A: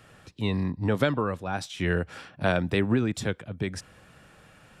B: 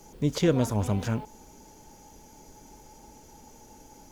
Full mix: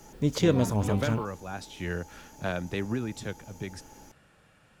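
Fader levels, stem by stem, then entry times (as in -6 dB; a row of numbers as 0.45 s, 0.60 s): -7.0 dB, 0.0 dB; 0.00 s, 0.00 s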